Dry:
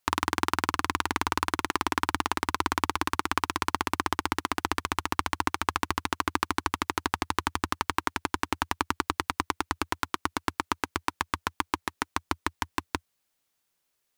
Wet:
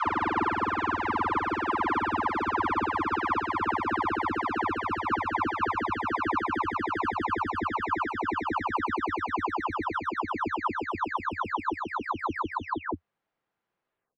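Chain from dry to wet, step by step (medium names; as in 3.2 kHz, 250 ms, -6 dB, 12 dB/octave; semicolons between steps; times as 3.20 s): delay that grows with frequency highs early, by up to 424 ms; low-pass 1.6 kHz 12 dB/octave; bass shelf 76 Hz -8 dB; trim +4.5 dB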